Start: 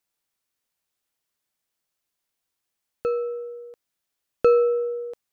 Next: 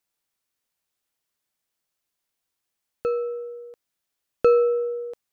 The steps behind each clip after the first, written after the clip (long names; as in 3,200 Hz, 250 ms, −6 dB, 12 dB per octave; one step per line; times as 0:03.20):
no processing that can be heard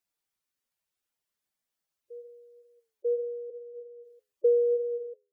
flanger 0.83 Hz, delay 9.9 ms, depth 3.1 ms, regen +81%
gate on every frequency bin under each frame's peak −10 dB strong
backwards echo 943 ms −16.5 dB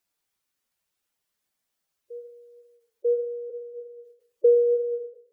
on a send at −12 dB: convolution reverb RT60 0.85 s, pre-delay 6 ms
on the sum: every ending faded ahead of time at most 160 dB per second
level +5.5 dB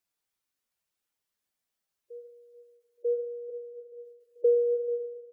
repeating echo 437 ms, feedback 55%, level −17 dB
level −5 dB